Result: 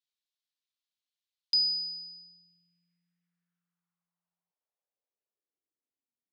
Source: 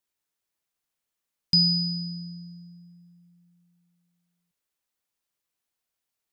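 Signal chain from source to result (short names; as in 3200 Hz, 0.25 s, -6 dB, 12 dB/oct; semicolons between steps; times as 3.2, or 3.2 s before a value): band-pass sweep 3800 Hz -> 240 Hz, 2.19–6.19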